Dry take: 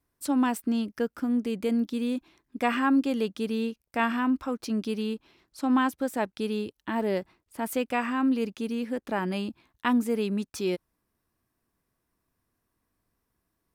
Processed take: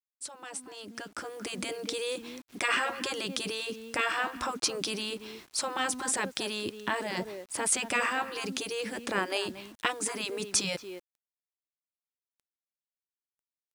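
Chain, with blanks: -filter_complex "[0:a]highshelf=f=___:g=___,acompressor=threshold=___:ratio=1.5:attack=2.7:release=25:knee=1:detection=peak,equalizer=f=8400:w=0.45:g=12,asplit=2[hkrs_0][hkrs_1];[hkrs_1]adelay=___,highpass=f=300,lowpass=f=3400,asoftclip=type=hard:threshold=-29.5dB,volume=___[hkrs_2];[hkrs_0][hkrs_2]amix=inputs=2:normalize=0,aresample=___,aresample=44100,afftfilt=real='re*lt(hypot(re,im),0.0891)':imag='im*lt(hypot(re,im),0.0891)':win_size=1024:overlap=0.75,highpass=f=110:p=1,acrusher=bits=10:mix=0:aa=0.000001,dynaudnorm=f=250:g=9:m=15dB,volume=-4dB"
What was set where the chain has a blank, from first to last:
3500, -4, -48dB, 230, -15dB, 22050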